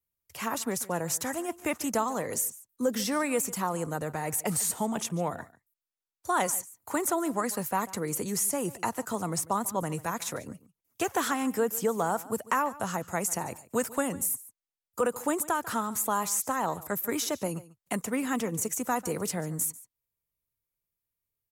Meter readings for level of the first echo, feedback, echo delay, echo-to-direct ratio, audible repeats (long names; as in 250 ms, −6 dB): −19.0 dB, repeats not evenly spaced, 144 ms, −19.0 dB, 1